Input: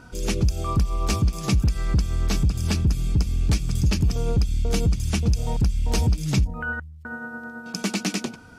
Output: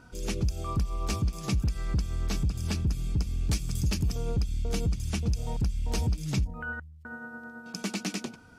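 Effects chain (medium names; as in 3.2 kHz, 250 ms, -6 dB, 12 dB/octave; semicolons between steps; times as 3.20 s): 3.49–4.16 s: treble shelf 5.2 kHz -> 8.3 kHz +8 dB; trim -7 dB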